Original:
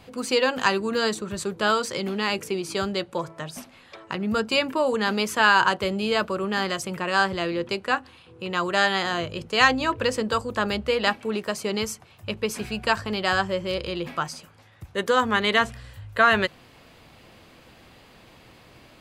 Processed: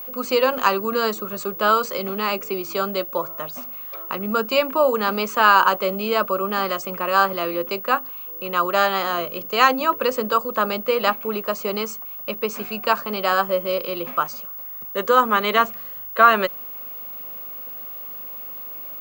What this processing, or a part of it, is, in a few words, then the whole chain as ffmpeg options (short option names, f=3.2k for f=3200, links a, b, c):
old television with a line whistle: -af "highpass=f=200:w=0.5412,highpass=f=200:w=1.3066,equalizer=f=320:t=q:w=4:g=-3,equalizer=f=570:t=q:w=4:g=5,equalizer=f=1.2k:t=q:w=4:g=9,equalizer=f=1.8k:t=q:w=4:g=-6,equalizer=f=3.5k:t=q:w=4:g=-5,equalizer=f=5.2k:t=q:w=4:g=-5,lowpass=f=7.2k:w=0.5412,lowpass=f=7.2k:w=1.3066,aeval=exprs='val(0)+0.0224*sin(2*PI*15625*n/s)':c=same,volume=1.5dB"